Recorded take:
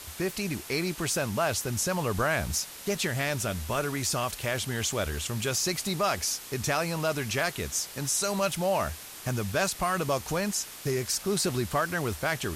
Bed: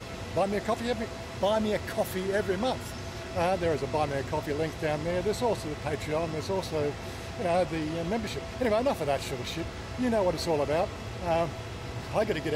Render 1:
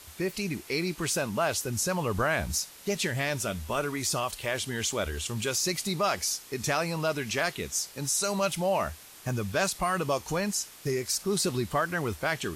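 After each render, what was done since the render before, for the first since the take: noise print and reduce 6 dB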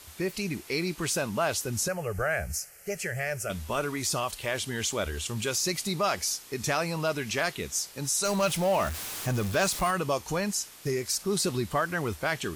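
1.88–3.5 fixed phaser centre 1000 Hz, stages 6; 8.25–9.91 zero-crossing step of -32.5 dBFS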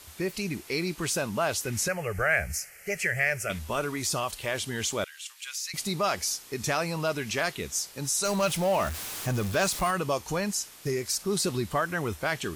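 1.64–3.59 bell 2100 Hz +10 dB 0.78 oct; 5.04–5.74 ladder high-pass 1400 Hz, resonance 25%; 11.77–12.2 notch 4600 Hz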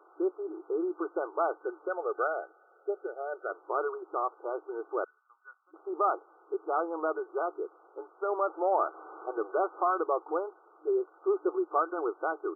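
FFT band-pass 310–1500 Hz; comb 2.5 ms, depth 40%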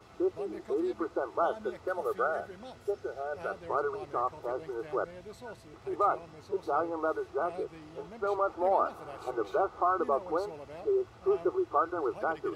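add bed -18 dB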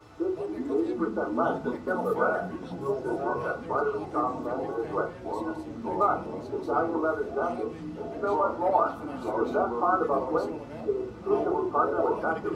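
FDN reverb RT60 0.33 s, low-frequency decay 1.45×, high-frequency decay 0.45×, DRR 0.5 dB; echoes that change speed 0.313 s, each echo -5 st, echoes 3, each echo -6 dB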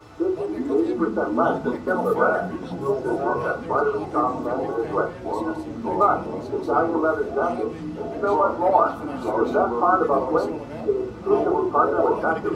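gain +6 dB

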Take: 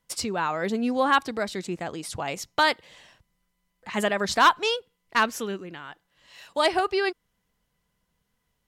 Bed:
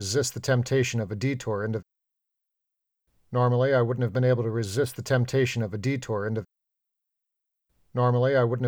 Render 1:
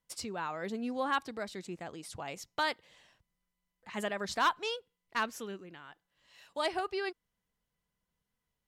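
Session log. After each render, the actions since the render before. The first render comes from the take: gain -10.5 dB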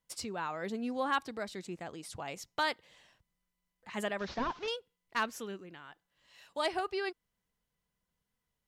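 4.19–4.68 delta modulation 32 kbps, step -46.5 dBFS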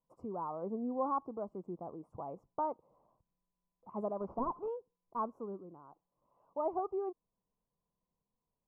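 elliptic low-pass 1100 Hz, stop band 40 dB; bell 62 Hz -6.5 dB 1.6 oct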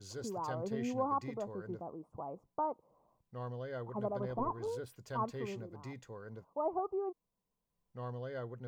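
add bed -20 dB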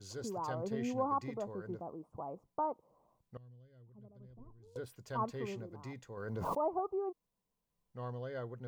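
3.37–4.76 passive tone stack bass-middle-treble 10-0-1; 6.17–6.73 backwards sustainer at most 26 dB/s

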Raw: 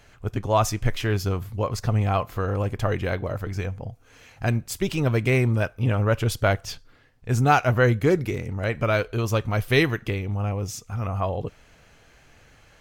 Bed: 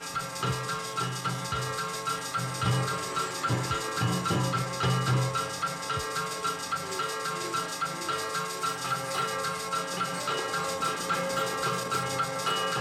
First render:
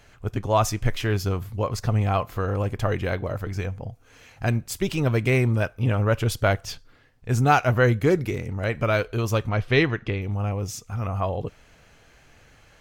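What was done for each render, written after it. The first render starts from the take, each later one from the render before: 9.49–10.22 LPF 4200 Hz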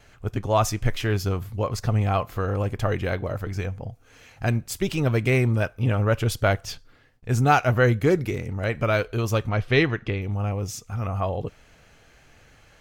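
notch 1000 Hz, Q 25; gate with hold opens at -51 dBFS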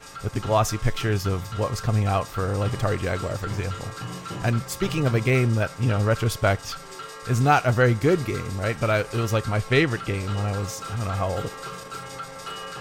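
add bed -6.5 dB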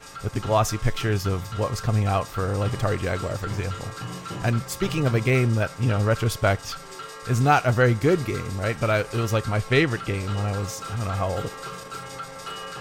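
nothing audible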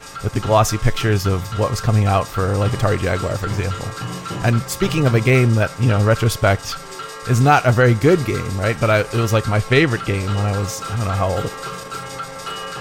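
gain +6.5 dB; limiter -2 dBFS, peak gain reduction 2.5 dB

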